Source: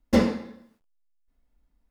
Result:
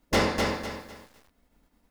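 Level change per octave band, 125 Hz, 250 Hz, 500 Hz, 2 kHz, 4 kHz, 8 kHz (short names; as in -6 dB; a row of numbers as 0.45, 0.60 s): 0.0, -6.5, -0.5, +7.0, +7.5, +7.5 dB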